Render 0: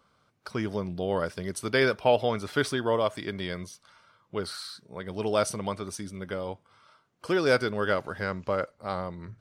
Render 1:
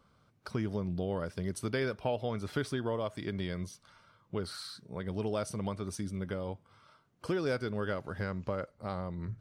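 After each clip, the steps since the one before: compression 2:1, threshold -35 dBFS, peak gain reduction 10 dB; bass shelf 280 Hz +10 dB; trim -3.5 dB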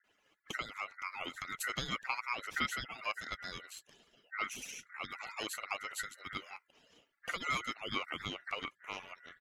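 harmonic-percussive separation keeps percussive; bands offset in time lows, highs 40 ms, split 300 Hz; ring modulator 1.7 kHz; trim +4.5 dB

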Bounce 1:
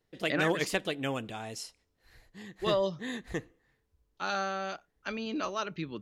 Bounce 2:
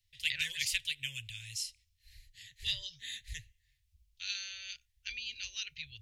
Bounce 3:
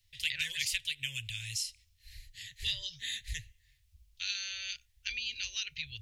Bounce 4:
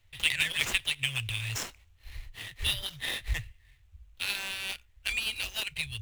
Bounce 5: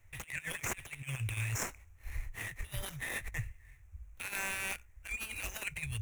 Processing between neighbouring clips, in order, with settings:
inverse Chebyshev band-stop 180–1300 Hz, stop band 40 dB; trim +4 dB
compression 2:1, threshold -41 dBFS, peak gain reduction 8 dB; trim +6.5 dB
median filter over 9 samples; trim +9 dB
compressor with a negative ratio -35 dBFS, ratio -0.5; high-order bell 3.8 kHz -14.5 dB 1 oct

